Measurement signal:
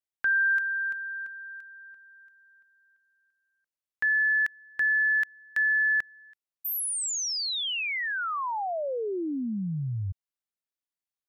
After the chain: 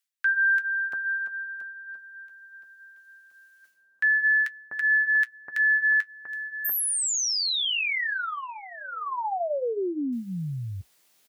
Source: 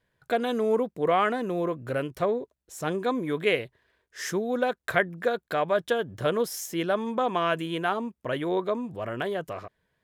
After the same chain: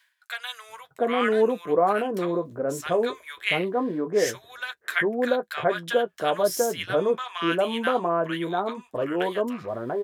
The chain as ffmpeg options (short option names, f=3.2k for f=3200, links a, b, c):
-filter_complex "[0:a]highpass=f=240:p=1,areverse,acompressor=mode=upward:threshold=-43dB:ratio=2.5:attack=1.1:release=211:knee=2.83:detection=peak,areverse,flanger=delay=7.1:depth=5.5:regen=-48:speed=0.21:shape=triangular,acrossover=split=1200[a][b];[a]adelay=690[c];[c][b]amix=inputs=2:normalize=0,volume=8dB"